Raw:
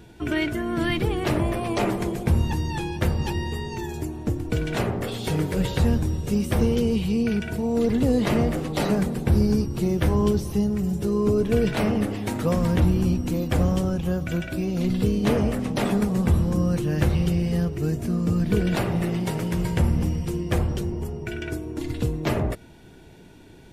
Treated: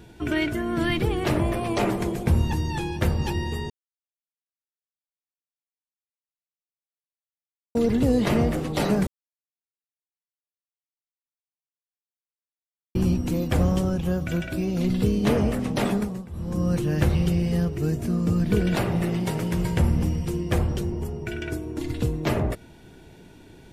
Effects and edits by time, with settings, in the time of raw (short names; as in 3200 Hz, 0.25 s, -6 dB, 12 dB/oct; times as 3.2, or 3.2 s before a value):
3.7–7.75 mute
9.07–12.95 mute
15.86–16.72 dip -22.5 dB, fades 0.42 s